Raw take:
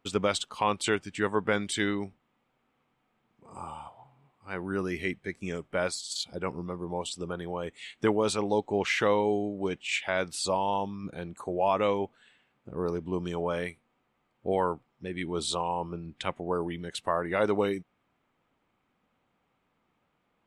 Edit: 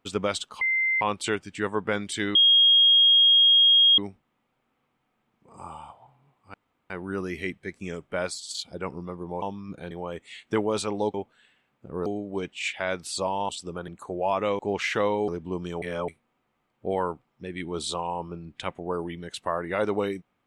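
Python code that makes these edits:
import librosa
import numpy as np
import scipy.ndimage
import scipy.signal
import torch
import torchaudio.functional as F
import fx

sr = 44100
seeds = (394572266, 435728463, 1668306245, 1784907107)

y = fx.edit(x, sr, fx.insert_tone(at_s=0.61, length_s=0.4, hz=2080.0, db=-21.0),
    fx.insert_tone(at_s=1.95, length_s=1.63, hz=3260.0, db=-14.0),
    fx.insert_room_tone(at_s=4.51, length_s=0.36),
    fx.swap(start_s=7.03, length_s=0.39, other_s=10.77, other_length_s=0.49),
    fx.swap(start_s=8.65, length_s=0.69, other_s=11.97, other_length_s=0.92),
    fx.reverse_span(start_s=13.43, length_s=0.26), tone=tone)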